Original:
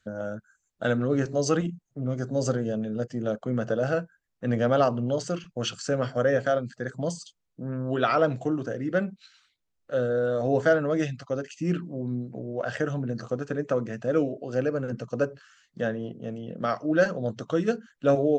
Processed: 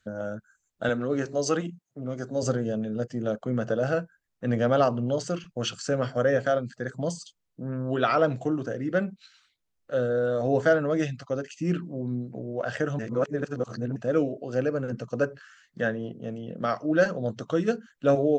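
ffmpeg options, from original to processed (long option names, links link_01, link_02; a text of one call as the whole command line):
ffmpeg -i in.wav -filter_complex "[0:a]asettb=1/sr,asplit=3[link_01][link_02][link_03];[link_01]atrim=end=0.894[link_04];[link_02]atrim=start=0.89:end=2.43,asetpts=PTS-STARTPTS,afade=type=in:duration=0.004:curve=qsin,afade=type=out:start_time=1.536:duration=0.004:curve=qsin,highpass=frequency=260:poles=1[link_05];[link_03]atrim=start=2.426[link_06];[link_04][link_05]acrossfade=duration=0.004:curve1=hsin:curve2=qsin[link_07];[link_07][link_06]acrossfade=duration=0.004:curve1=qsin:curve2=hsin,asettb=1/sr,asplit=3[link_08][link_09][link_10];[link_08]atrim=end=15.234[link_11];[link_09]atrim=start=15.23:end=15.9,asetpts=PTS-STARTPTS,afade=type=in:duration=0.004:curve=qsin,afade=type=out:start_time=0.666:duration=0.004:curve=qsin,equalizer=frequency=1700:width_type=o:width=0.74:gain=6[link_12];[link_10]atrim=start=15.896[link_13];[link_11][link_12]acrossfade=duration=0.004:curve1=hsin:curve2=qsin[link_14];[link_14][link_13]acrossfade=duration=0.004:curve1=qsin:curve2=hsin,asplit=3[link_15][link_16][link_17];[link_15]atrim=end=12.992[link_18];[link_16]atrim=start=12.988:end=13.962,asetpts=PTS-STARTPTS,areverse[link_19];[link_17]atrim=start=13.958[link_20];[link_18][link_19]acrossfade=duration=0.004:curve1=hsin:curve2=hsin[link_21];[link_21][link_20]acrossfade=duration=0.004:curve1=hsin:curve2=hsin" out.wav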